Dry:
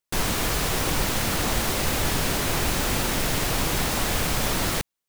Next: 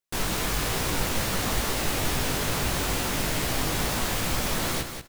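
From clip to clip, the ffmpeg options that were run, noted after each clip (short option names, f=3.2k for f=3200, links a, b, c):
-af "flanger=delay=15.5:depth=5.4:speed=2.3,aecho=1:1:186|372|558:0.398|0.0717|0.0129"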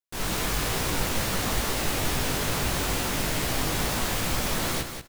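-af "dynaudnorm=f=130:g=3:m=7.5dB,volume=-7.5dB"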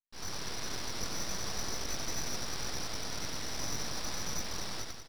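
-af "aecho=1:1:93.29|131.2:0.708|0.316,lowpass=f=2.6k:t=q:w=0.5098,lowpass=f=2.6k:t=q:w=0.6013,lowpass=f=2.6k:t=q:w=0.9,lowpass=f=2.6k:t=q:w=2.563,afreqshift=-3000,aeval=exprs='abs(val(0))':c=same,volume=-9dB"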